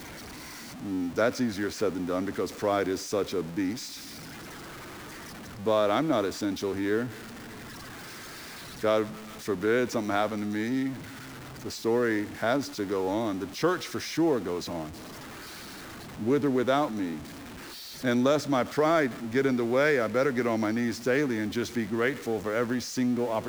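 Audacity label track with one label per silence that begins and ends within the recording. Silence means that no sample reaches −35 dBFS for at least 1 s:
3.870000	5.610000	silence
7.100000	8.830000	silence
14.870000	16.190000	silence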